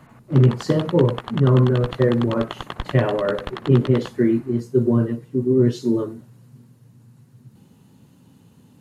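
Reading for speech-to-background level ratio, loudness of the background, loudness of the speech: 14.5 dB, −34.5 LKFS, −20.0 LKFS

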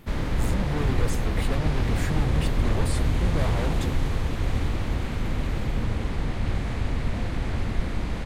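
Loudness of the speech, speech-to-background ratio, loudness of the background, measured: −33.0 LKFS, −5.0 dB, −28.0 LKFS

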